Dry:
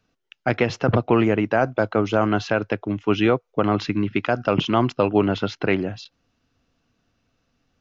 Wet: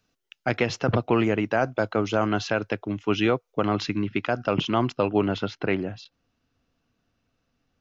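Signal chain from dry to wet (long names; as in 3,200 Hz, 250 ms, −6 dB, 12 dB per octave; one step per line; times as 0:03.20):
high-shelf EQ 4,000 Hz +9 dB, from 0:03.99 +3.5 dB, from 0:05.45 −2.5 dB
level −4 dB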